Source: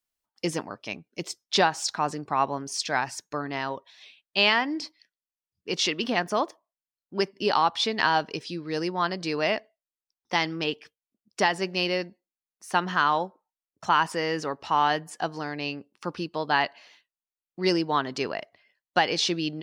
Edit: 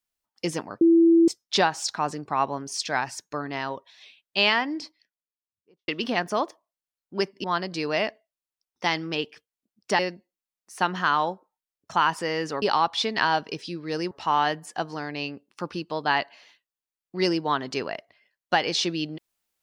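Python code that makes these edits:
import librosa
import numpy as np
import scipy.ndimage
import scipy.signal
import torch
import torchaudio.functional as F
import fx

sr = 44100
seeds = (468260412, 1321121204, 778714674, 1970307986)

y = fx.studio_fade_out(x, sr, start_s=4.55, length_s=1.33)
y = fx.edit(y, sr, fx.bleep(start_s=0.81, length_s=0.47, hz=333.0, db=-13.0),
    fx.move(start_s=7.44, length_s=1.49, to_s=14.55),
    fx.cut(start_s=11.48, length_s=0.44), tone=tone)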